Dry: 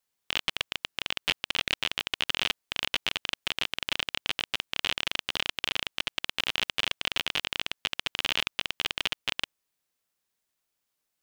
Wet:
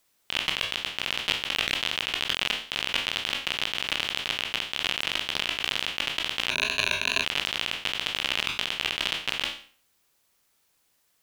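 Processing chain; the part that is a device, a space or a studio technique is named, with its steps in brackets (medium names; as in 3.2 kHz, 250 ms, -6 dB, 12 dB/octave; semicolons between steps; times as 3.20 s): spectral sustain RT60 0.45 s; 6.50–7.24 s: rippled EQ curve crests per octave 1.5, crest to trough 16 dB; plain cassette with noise reduction switched in (tape noise reduction on one side only decoder only; wow and flutter; white noise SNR 39 dB)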